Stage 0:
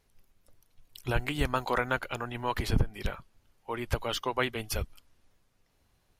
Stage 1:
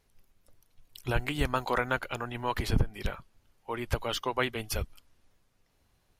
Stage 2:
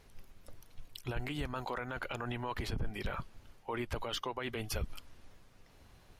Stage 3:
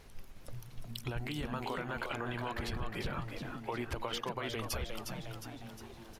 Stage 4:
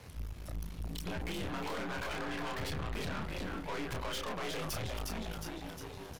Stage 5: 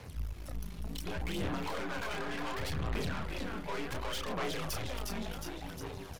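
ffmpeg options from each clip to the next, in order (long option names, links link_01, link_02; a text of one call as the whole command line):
ffmpeg -i in.wav -af anull out.wav
ffmpeg -i in.wav -af "highshelf=frequency=6400:gain=-7,areverse,acompressor=threshold=-37dB:ratio=8,areverse,alimiter=level_in=13dB:limit=-24dB:level=0:latency=1:release=65,volume=-13dB,volume=10.5dB" out.wav
ffmpeg -i in.wav -filter_complex "[0:a]acompressor=threshold=-39dB:ratio=6,asplit=2[link_01][link_02];[link_02]asplit=7[link_03][link_04][link_05][link_06][link_07][link_08][link_09];[link_03]adelay=358,afreqshift=110,volume=-6dB[link_10];[link_04]adelay=716,afreqshift=220,volume=-11.4dB[link_11];[link_05]adelay=1074,afreqshift=330,volume=-16.7dB[link_12];[link_06]adelay=1432,afreqshift=440,volume=-22.1dB[link_13];[link_07]adelay=1790,afreqshift=550,volume=-27.4dB[link_14];[link_08]adelay=2148,afreqshift=660,volume=-32.8dB[link_15];[link_09]adelay=2506,afreqshift=770,volume=-38.1dB[link_16];[link_10][link_11][link_12][link_13][link_14][link_15][link_16]amix=inputs=7:normalize=0[link_17];[link_01][link_17]amix=inputs=2:normalize=0,volume=4.5dB" out.wav
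ffmpeg -i in.wav -filter_complex "[0:a]asplit=2[link_01][link_02];[link_02]adelay=29,volume=-4.5dB[link_03];[link_01][link_03]amix=inputs=2:normalize=0,afreqshift=48,aeval=exprs='(tanh(141*val(0)+0.7)-tanh(0.7))/141':channel_layout=same,volume=7dB" out.wav
ffmpeg -i in.wav -af "aphaser=in_gain=1:out_gain=1:delay=5:decay=0.38:speed=0.68:type=sinusoidal" out.wav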